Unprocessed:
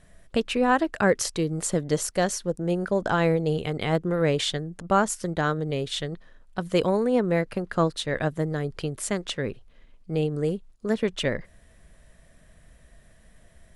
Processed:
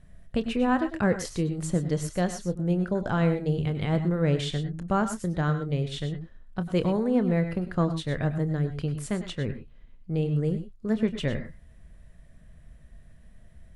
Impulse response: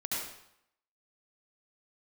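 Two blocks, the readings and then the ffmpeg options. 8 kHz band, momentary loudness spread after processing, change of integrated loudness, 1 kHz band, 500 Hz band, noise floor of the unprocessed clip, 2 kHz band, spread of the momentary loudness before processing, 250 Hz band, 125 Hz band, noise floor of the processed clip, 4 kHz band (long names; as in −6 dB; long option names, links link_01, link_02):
−9.0 dB, 8 LU, −1.5 dB, −5.5 dB, −4.5 dB, −55 dBFS, −5.5 dB, 9 LU, +1.0 dB, +3.0 dB, −52 dBFS, −7.0 dB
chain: -filter_complex "[0:a]bass=frequency=250:gain=10,treble=frequency=4000:gain=-4,asplit=2[link_01][link_02];[1:a]atrim=start_sample=2205,afade=type=out:start_time=0.15:duration=0.01,atrim=end_sample=7056,adelay=28[link_03];[link_02][link_03]afir=irnorm=-1:irlink=0,volume=-10.5dB[link_04];[link_01][link_04]amix=inputs=2:normalize=0,volume=-6dB"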